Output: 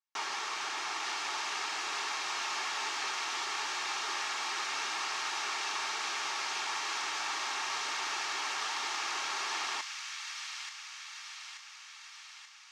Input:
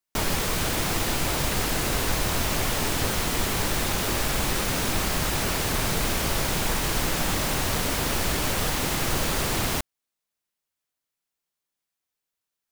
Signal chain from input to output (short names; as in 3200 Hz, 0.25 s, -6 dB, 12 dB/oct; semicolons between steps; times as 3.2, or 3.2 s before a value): rattling part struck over -28 dBFS, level -24 dBFS; Chebyshev band-pass 400–6200 Hz, order 3; resonant low shelf 750 Hz -6.5 dB, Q 3; in parallel at -6 dB: soft clip -25 dBFS, distortion -15 dB; on the sum: notch comb 500 Hz; on a send: thin delay 0.882 s, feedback 60%, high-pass 2000 Hz, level -3.5 dB; on the sum: gain -9 dB